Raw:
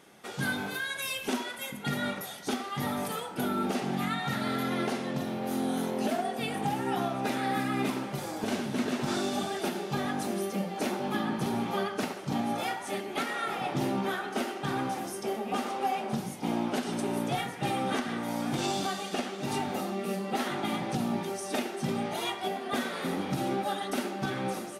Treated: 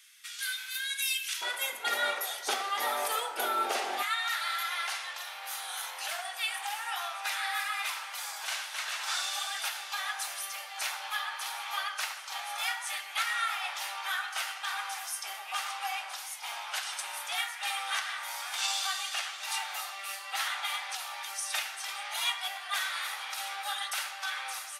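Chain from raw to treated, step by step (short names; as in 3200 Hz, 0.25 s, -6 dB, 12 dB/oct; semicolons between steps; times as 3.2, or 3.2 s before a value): Bessel high-pass 2700 Hz, order 6, from 1.41 s 720 Hz, from 4.02 s 1500 Hz; gain +6 dB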